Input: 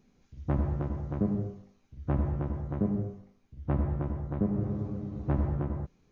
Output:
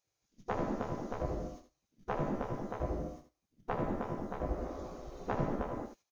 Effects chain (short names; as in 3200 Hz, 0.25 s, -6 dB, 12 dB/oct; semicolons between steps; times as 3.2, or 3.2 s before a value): spectral gate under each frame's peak -15 dB weak; gate -58 dBFS, range -18 dB; tone controls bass +10 dB, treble +12 dB; on a send: echo 78 ms -8 dB; on the sum: gain +3.5 dB